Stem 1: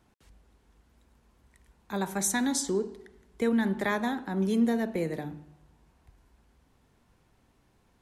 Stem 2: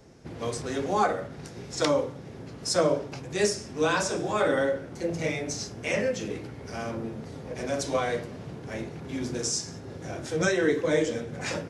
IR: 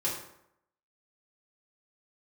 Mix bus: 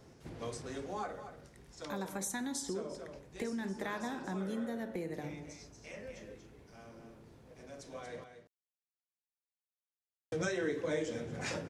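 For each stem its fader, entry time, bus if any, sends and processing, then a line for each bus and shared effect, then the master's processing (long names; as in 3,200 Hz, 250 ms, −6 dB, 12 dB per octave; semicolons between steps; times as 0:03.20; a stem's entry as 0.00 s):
−1.5 dB, 0.00 s, send −17.5 dB, no echo send, downward compressor 2 to 1, threshold −39 dBFS, peak gain reduction 10 dB
−4.5 dB, 0.00 s, muted 0:08.24–0:10.32, no send, echo send −22.5 dB, automatic ducking −16 dB, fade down 1.70 s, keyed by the first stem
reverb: on, RT60 0.75 s, pre-delay 3 ms
echo: single-tap delay 234 ms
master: downward compressor 2 to 1, threshold −36 dBFS, peak gain reduction 7.5 dB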